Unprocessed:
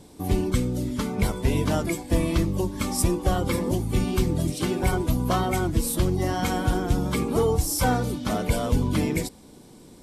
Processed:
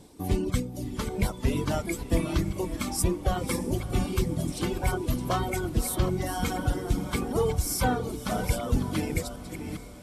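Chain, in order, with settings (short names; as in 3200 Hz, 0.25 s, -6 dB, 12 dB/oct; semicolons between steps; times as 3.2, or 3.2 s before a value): reverse delay 0.407 s, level -9 dB; reverb removal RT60 1.3 s; diffused feedback echo 0.578 s, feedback 53%, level -14 dB; gain -2.5 dB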